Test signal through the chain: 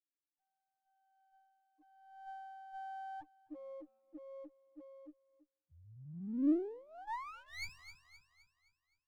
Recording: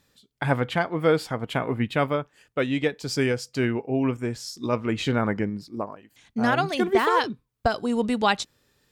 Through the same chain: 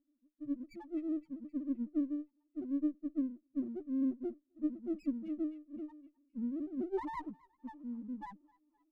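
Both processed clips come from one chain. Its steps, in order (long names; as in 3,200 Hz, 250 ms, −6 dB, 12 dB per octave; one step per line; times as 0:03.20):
parametric band 180 Hz +5 dB 1.4 octaves
in parallel at +2 dB: downward compressor, threshold −37 dBFS
on the sum: notch comb filter 820 Hz
harmonic and percussive parts rebalanced percussive +8 dB
speech leveller within 3 dB 2 s
formant filter u
high-shelf EQ 4,600 Hz −9 dB
auto-filter low-pass sine 0.43 Hz 420–2,200 Hz
spectral peaks only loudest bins 1
on a send: delay with a high-pass on its return 259 ms, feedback 46%, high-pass 2,600 Hz, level −6.5 dB
on the sum: windowed peak hold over 9 samples
level −5 dB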